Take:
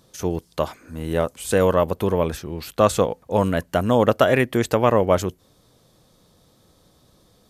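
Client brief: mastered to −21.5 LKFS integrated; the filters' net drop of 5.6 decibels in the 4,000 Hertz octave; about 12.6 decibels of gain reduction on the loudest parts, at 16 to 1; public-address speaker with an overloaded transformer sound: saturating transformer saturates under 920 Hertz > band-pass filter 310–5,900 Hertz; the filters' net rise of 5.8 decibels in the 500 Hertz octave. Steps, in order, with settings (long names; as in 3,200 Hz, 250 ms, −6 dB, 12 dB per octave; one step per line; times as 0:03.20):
parametric band 500 Hz +7.5 dB
parametric band 4,000 Hz −7.5 dB
downward compressor 16 to 1, threshold −19 dBFS
saturating transformer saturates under 920 Hz
band-pass filter 310–5,900 Hz
level +7 dB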